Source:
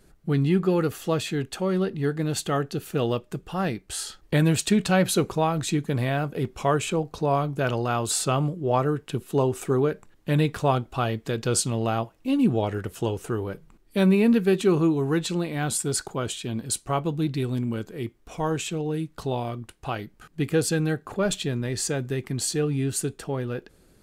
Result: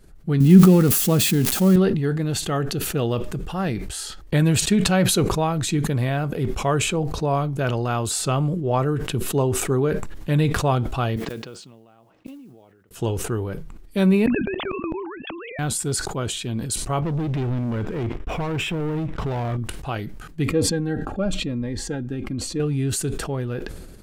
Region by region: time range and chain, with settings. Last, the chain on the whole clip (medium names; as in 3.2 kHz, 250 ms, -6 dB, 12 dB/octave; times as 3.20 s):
0.40–1.76 s: zero-crossing glitches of -22.5 dBFS + peaking EQ 210 Hz +12 dB 0.92 oct
11.16–12.91 s: band-pass 180–3800 Hz + inverted gate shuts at -27 dBFS, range -29 dB + modulation noise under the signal 25 dB
14.26–15.59 s: formants replaced by sine waves + level held to a coarse grid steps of 21 dB + spectrum-flattening compressor 2:1
17.02–19.57 s: Savitzky-Golay filter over 25 samples + compression, threshold -29 dBFS + waveshaping leveller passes 3
20.48–22.60 s: low-pass 1.3 kHz 6 dB/octave + comb 3.7 ms, depth 52% + Shepard-style phaser falling 1 Hz
whole clip: bass shelf 100 Hz +9.5 dB; decay stretcher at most 40 dB/s